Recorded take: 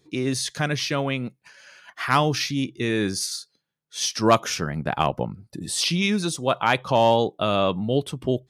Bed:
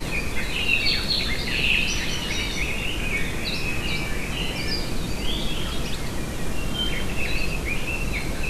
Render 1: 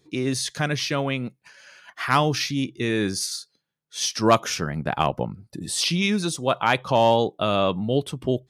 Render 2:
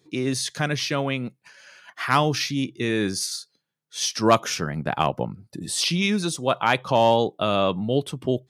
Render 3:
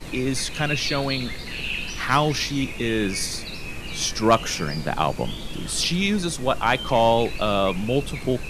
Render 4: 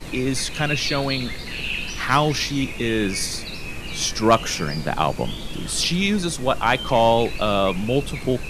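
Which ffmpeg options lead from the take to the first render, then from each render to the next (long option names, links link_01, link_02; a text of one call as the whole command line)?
ffmpeg -i in.wav -af anull out.wav
ffmpeg -i in.wav -af "highpass=83" out.wav
ffmpeg -i in.wav -i bed.wav -filter_complex "[1:a]volume=-7.5dB[link_01];[0:a][link_01]amix=inputs=2:normalize=0" out.wav
ffmpeg -i in.wav -af "volume=1.5dB" out.wav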